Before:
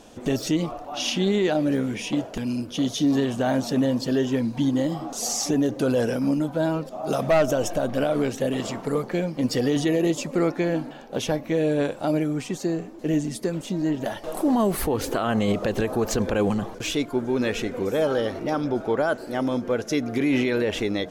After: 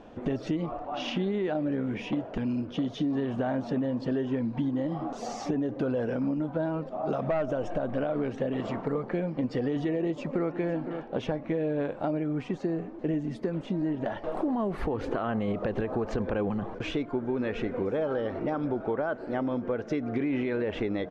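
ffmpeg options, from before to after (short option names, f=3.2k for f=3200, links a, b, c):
-filter_complex "[0:a]asplit=2[a][b];[b]afade=t=in:st=9.96:d=0.01,afade=t=out:st=10.53:d=0.01,aecho=0:1:510|1020:0.199526|0.0199526[c];[a][c]amix=inputs=2:normalize=0,lowpass=2k,acompressor=threshold=-26dB:ratio=6"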